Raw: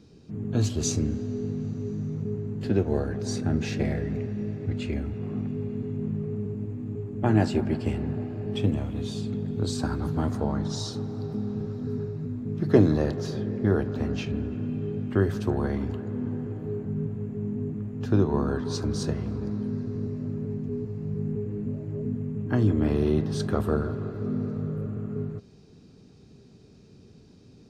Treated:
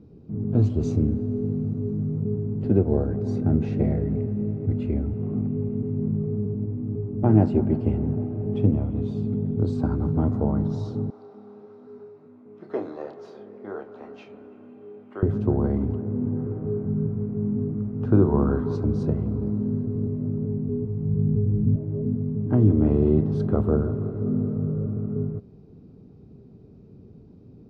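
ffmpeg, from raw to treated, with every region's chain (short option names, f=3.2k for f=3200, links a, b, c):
-filter_complex "[0:a]asettb=1/sr,asplit=3[a][b][c];[a]atrim=end=11.104[d];[b]atrim=start=11.1:end=15.23,asetpts=PTS-STARTPTS,afade=t=in:d=0.004:c=qsin,afade=t=out:st=4.126:d=0.004:c=qsin,highpass=860,asplit=2[e][f];[f]adelay=29,volume=-7dB[g];[e][g]amix=inputs=2:normalize=0,atrim=end_sample=182133[h];[c]atrim=start=15.226[i];[d][h]acrossfade=d=0.004:c1=hsin:c2=qsin[j];[j][i]acrossfade=d=0.004:c1=qsin:c2=hsin,asettb=1/sr,asplit=3[k][l][m];[k]atrim=end=16.364[n];[l]atrim=start=16.36:end=18.76,asetpts=PTS-STARTPTS,afade=t=in:d=0.004:c=qsin,afade=t=out:st=2.396:d=0.004:c=qsin,equalizer=f=1.4k:t=o:w=1.1:g=6.5,asplit=2[o][p];[p]adelay=43,volume=-12dB[q];[o][q]amix=inputs=2:normalize=0,atrim=end_sample=105840[r];[m]atrim=start=18.756[s];[n][r]acrossfade=d=0.004:c1=hsin:c2=qsin[t];[t][s]acrossfade=d=0.004:c1=qsin:c2=hsin,asettb=1/sr,asplit=3[u][v][w];[u]atrim=end=20.834[x];[v]atrim=start=20.83:end=21.76,asetpts=PTS-STARTPTS,afade=t=in:d=0.004:c=qsin,afade=t=out:st=0.926:d=0.004:c=qsin,bandreject=f=600:w=9.9,asubboost=boost=10.5:cutoff=180[y];[w]atrim=start=21.756[z];[x][y]acrossfade=d=0.004:c1=hsin:c2=qsin[aa];[aa][z]acrossfade=d=0.004:c1=qsin:c2=hsin,lowpass=f=2.2k:p=1,tiltshelf=f=1.4k:g=9,bandreject=f=1.7k:w=8.9,volume=-4dB"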